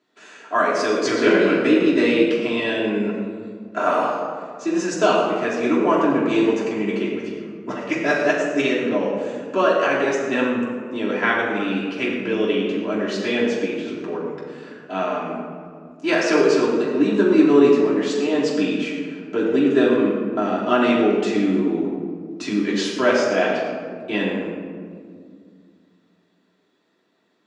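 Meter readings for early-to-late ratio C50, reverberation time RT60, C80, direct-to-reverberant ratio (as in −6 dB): 1.0 dB, 2.0 s, 3.0 dB, −7.5 dB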